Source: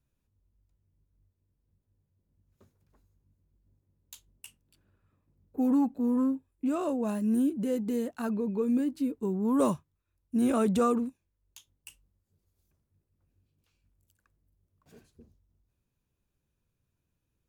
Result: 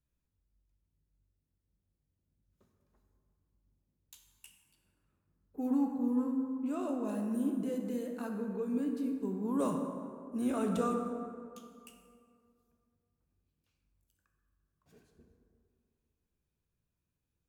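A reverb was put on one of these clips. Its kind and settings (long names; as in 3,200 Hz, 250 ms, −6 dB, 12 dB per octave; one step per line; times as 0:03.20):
dense smooth reverb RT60 2.3 s, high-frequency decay 0.45×, DRR 2.5 dB
level −7.5 dB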